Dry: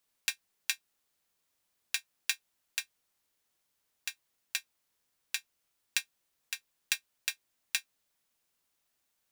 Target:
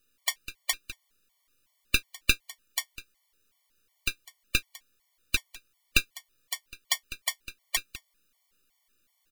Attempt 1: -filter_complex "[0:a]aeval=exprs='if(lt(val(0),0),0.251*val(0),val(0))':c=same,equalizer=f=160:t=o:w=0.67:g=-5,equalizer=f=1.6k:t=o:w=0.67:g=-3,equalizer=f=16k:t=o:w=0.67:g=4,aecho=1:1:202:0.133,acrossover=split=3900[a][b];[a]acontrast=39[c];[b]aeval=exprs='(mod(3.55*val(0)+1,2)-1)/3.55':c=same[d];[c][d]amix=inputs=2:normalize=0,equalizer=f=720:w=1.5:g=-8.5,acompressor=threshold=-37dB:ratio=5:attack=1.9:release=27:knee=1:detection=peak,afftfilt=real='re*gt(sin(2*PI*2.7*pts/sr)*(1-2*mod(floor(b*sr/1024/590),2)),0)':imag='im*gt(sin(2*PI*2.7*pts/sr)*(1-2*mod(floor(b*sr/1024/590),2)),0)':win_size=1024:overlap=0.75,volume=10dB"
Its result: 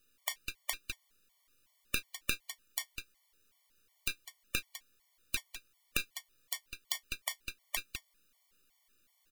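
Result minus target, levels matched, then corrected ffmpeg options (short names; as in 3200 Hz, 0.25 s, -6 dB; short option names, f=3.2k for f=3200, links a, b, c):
compressor: peak gain reduction +14.5 dB
-filter_complex "[0:a]aeval=exprs='if(lt(val(0),0),0.251*val(0),val(0))':c=same,equalizer=f=160:t=o:w=0.67:g=-5,equalizer=f=1.6k:t=o:w=0.67:g=-3,equalizer=f=16k:t=o:w=0.67:g=4,aecho=1:1:202:0.133,acrossover=split=3900[a][b];[a]acontrast=39[c];[b]aeval=exprs='(mod(3.55*val(0)+1,2)-1)/3.55':c=same[d];[c][d]amix=inputs=2:normalize=0,equalizer=f=720:w=1.5:g=-8.5,afftfilt=real='re*gt(sin(2*PI*2.7*pts/sr)*(1-2*mod(floor(b*sr/1024/590),2)),0)':imag='im*gt(sin(2*PI*2.7*pts/sr)*(1-2*mod(floor(b*sr/1024/590),2)),0)':win_size=1024:overlap=0.75,volume=10dB"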